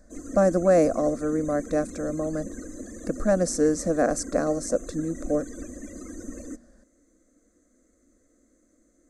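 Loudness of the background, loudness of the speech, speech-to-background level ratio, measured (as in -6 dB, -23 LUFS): -40.0 LUFS, -25.0 LUFS, 15.0 dB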